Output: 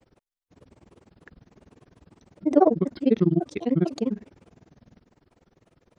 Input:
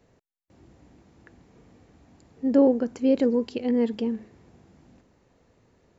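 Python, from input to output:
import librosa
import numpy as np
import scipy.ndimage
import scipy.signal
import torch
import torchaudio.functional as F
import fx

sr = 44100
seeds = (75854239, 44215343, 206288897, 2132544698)

y = fx.granulator(x, sr, seeds[0], grain_ms=52.0, per_s=20.0, spray_ms=11.0, spread_st=7)
y = F.gain(torch.from_numpy(y), 4.0).numpy()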